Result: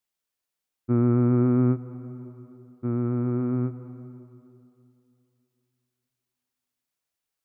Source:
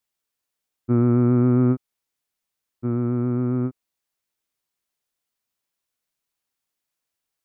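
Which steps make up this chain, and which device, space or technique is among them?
compressed reverb return (on a send at -11.5 dB: reverb RT60 2.7 s, pre-delay 0.116 s + compressor, threshold -19 dBFS, peak gain reduction 8.5 dB); on the sum: gain -3 dB

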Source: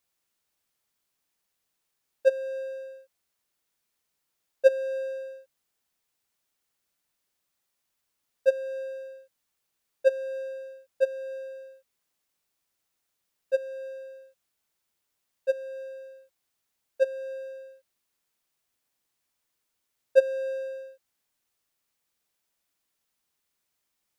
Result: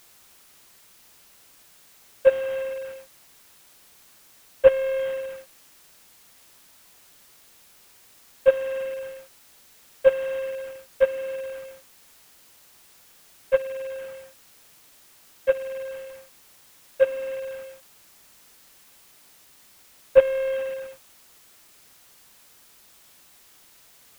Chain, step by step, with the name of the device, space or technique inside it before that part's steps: army field radio (BPF 360–3400 Hz; CVSD 16 kbps; white noise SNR 25 dB); gain +6.5 dB

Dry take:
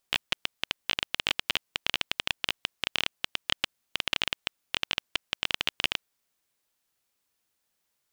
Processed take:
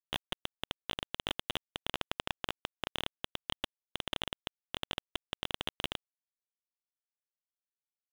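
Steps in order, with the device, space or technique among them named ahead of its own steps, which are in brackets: 1.93–2.89 tone controls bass -7 dB, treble -12 dB; early transistor amplifier (crossover distortion -39 dBFS; slew limiter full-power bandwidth 200 Hz)

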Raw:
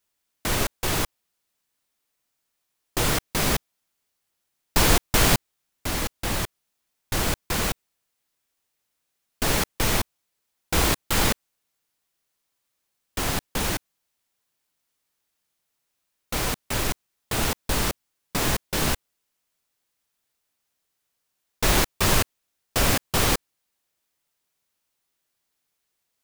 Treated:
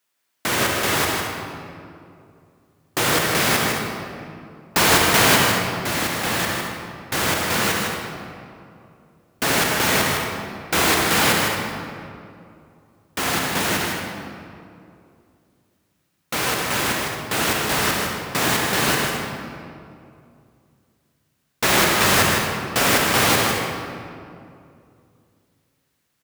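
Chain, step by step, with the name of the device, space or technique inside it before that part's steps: stadium PA (HPF 140 Hz 12 dB/oct; bell 1700 Hz +4.5 dB 1.8 oct; loudspeakers at several distances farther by 54 m -6 dB, 77 m -12 dB; reverb RT60 2.5 s, pre-delay 49 ms, DRR 2 dB); gain +2 dB

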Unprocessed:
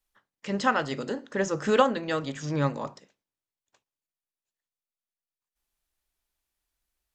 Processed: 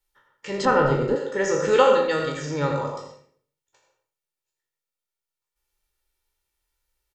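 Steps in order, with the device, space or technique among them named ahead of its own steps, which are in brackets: spectral trails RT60 0.48 s; microphone above a desk (comb 2.2 ms, depth 59%; reverb RT60 0.45 s, pre-delay 77 ms, DRR 4.5 dB); 0.65–1.16 tilt -4 dB/oct

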